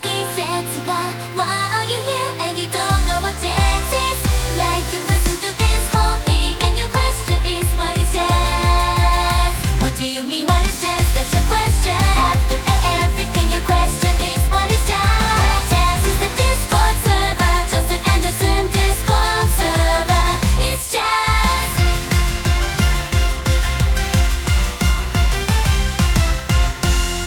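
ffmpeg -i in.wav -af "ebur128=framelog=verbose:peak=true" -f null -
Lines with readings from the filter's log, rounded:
Integrated loudness:
  I:         -17.6 LUFS
  Threshold: -27.6 LUFS
Loudness range:
  LRA:         2.3 LU
  Threshold: -37.5 LUFS
  LRA low:   -18.7 LUFS
  LRA high:  -16.4 LUFS
True peak:
  Peak:       -1.1 dBFS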